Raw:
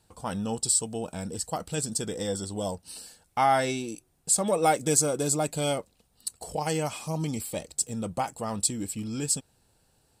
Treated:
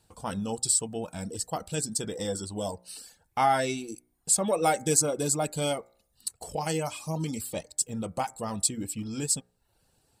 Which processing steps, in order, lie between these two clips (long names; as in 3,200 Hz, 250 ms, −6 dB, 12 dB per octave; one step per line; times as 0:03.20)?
hum removal 60.3 Hz, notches 38
reverb reduction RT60 0.54 s